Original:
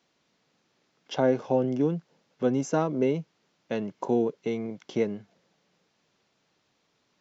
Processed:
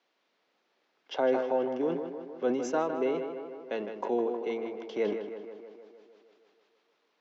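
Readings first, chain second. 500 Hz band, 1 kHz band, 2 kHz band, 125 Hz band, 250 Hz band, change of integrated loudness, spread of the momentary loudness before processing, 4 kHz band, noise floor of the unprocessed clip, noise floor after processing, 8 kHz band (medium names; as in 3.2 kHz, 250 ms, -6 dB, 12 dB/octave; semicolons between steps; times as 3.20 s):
-1.5 dB, -0.5 dB, -0.5 dB, -17.0 dB, -6.0 dB, -3.5 dB, 9 LU, -2.5 dB, -73 dBFS, -76 dBFS, no reading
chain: high-pass 120 Hz; three-band isolator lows -23 dB, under 290 Hz, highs -16 dB, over 4.8 kHz; tape echo 156 ms, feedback 70%, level -7 dB, low-pass 3 kHz; decay stretcher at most 56 dB/s; trim -2 dB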